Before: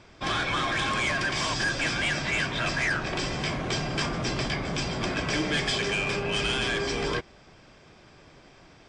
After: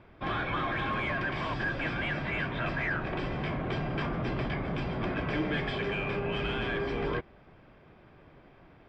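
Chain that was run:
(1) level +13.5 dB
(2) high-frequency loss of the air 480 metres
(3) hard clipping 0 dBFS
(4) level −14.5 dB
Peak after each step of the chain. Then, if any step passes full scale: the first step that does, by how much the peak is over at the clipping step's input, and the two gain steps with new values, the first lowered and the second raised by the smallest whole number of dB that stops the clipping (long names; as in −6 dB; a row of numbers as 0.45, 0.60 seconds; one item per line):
−3.0, −6.0, −6.0, −20.5 dBFS
no step passes full scale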